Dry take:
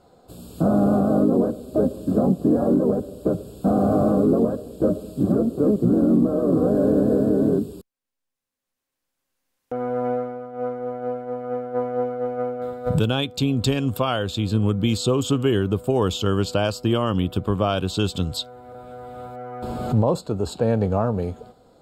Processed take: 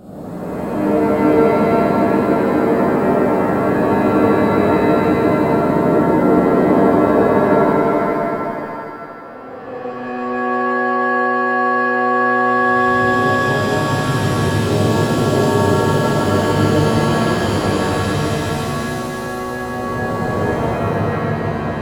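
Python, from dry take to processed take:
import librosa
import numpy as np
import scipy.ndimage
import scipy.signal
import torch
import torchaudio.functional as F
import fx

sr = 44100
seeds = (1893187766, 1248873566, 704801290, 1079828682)

y = fx.spec_blur(x, sr, span_ms=1230.0)
y = fx.air_absorb(y, sr, metres=400.0, at=(20.38, 21.22))
y = fx.echo_feedback(y, sr, ms=158, feedback_pct=59, wet_db=-3.5)
y = fx.rev_shimmer(y, sr, seeds[0], rt60_s=2.1, semitones=7, shimmer_db=-2, drr_db=-8.5)
y = F.gain(torch.from_numpy(y), -5.0).numpy()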